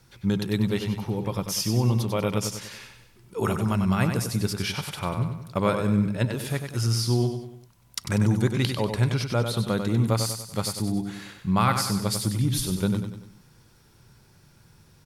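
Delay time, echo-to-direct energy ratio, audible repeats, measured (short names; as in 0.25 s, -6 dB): 96 ms, -6.0 dB, 4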